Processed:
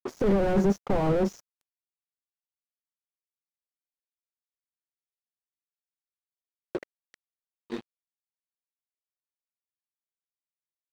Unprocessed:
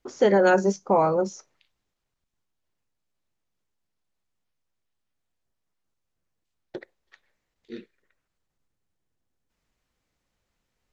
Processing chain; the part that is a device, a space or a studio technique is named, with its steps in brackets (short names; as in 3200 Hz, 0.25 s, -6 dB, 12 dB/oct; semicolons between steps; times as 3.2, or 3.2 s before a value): early transistor amplifier (crossover distortion -43 dBFS; slew limiter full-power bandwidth 15 Hz); gain +7 dB